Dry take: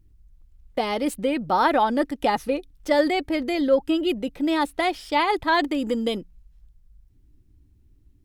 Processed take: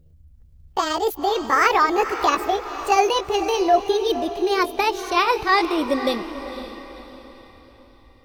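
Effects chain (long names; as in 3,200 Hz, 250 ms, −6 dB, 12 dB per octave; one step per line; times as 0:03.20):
pitch glide at a constant tempo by +8 semitones ending unshifted
feedback delay with all-pass diffusion 511 ms, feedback 42%, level −11 dB
level +3.5 dB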